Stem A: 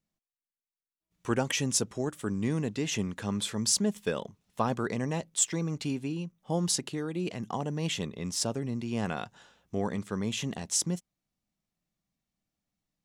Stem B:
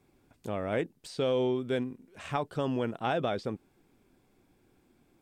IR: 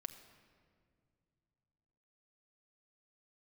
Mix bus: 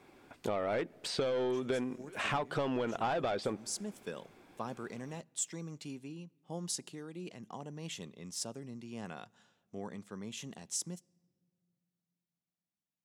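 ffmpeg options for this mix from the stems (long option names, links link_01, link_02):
-filter_complex "[0:a]highpass=120,adynamicequalizer=threshold=0.00708:dfrequency=4700:dqfactor=0.7:tfrequency=4700:tqfactor=0.7:attack=5:release=100:ratio=0.375:range=2.5:mode=boostabove:tftype=highshelf,volume=-12.5dB,asplit=2[link_01][link_02];[link_02]volume=-14.5dB[link_03];[1:a]asplit=2[link_04][link_05];[link_05]highpass=frequency=720:poles=1,volume=18dB,asoftclip=type=tanh:threshold=-16.5dB[link_06];[link_04][link_06]amix=inputs=2:normalize=0,lowpass=frequency=2700:poles=1,volume=-6dB,volume=0.5dB,asplit=3[link_07][link_08][link_09];[link_08]volume=-18dB[link_10];[link_09]apad=whole_len=575477[link_11];[link_01][link_11]sidechaincompress=threshold=-36dB:ratio=8:attack=16:release=523[link_12];[2:a]atrim=start_sample=2205[link_13];[link_03][link_10]amix=inputs=2:normalize=0[link_14];[link_14][link_13]afir=irnorm=-1:irlink=0[link_15];[link_12][link_07][link_15]amix=inputs=3:normalize=0,acompressor=threshold=-30dB:ratio=12"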